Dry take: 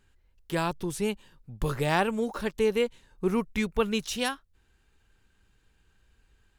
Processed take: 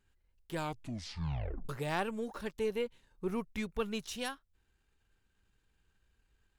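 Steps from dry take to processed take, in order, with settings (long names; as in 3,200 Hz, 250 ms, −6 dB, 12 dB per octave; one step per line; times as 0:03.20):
gain on one half-wave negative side −3 dB
0:00.55: tape stop 1.14 s
0:02.73–0:03.32: dynamic equaliser 7,100 Hz, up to −6 dB, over −57 dBFS, Q 1.1
level −7.5 dB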